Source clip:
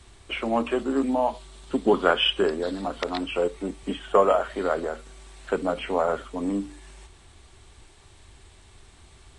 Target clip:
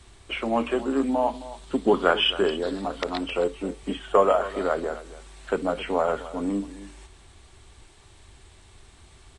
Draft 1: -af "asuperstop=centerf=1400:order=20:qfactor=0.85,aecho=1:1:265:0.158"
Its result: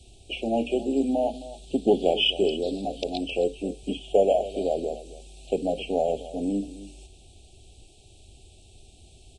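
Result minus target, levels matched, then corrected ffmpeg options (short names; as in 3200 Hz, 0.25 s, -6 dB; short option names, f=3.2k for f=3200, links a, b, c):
1000 Hz band -5.0 dB
-af "aecho=1:1:265:0.158"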